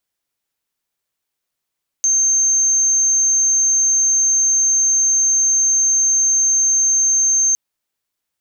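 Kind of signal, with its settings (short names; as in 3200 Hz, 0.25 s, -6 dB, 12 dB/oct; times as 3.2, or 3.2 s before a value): tone sine 6330 Hz -12 dBFS 5.51 s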